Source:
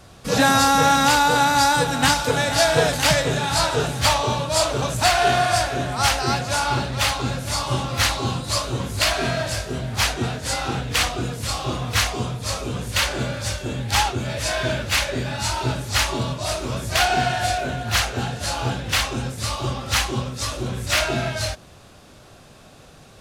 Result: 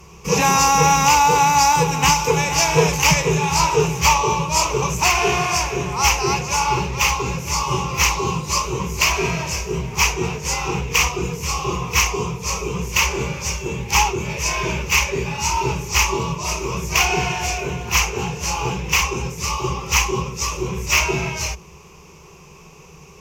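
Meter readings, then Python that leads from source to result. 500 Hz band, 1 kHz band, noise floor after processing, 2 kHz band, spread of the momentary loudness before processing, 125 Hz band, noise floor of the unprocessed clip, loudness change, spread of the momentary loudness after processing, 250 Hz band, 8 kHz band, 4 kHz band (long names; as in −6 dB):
+0.5 dB, +3.0 dB, −44 dBFS, +2.0 dB, 10 LU, +1.0 dB, −47 dBFS, +2.5 dB, 10 LU, +0.5 dB, +5.5 dB, −0.5 dB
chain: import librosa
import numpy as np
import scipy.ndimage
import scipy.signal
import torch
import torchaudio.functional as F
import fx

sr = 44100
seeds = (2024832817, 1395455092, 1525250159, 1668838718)

y = fx.ripple_eq(x, sr, per_octave=0.77, db=17)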